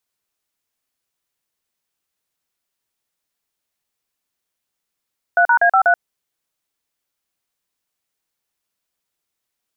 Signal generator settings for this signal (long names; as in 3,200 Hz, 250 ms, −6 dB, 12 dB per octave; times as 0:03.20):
touch tones "3#A53", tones 82 ms, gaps 40 ms, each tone −12.5 dBFS